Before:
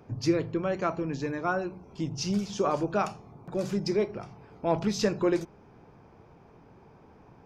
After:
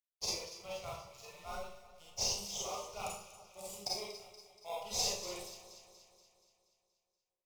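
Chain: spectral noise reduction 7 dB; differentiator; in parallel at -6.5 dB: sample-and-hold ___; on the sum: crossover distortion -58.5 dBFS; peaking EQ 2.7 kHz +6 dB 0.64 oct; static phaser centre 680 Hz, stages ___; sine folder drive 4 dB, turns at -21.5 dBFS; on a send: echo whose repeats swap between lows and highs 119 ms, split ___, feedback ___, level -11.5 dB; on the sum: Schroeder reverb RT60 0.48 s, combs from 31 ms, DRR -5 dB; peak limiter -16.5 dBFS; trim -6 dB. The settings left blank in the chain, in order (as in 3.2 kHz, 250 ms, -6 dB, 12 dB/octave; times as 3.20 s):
30×, 4, 1.4 kHz, 74%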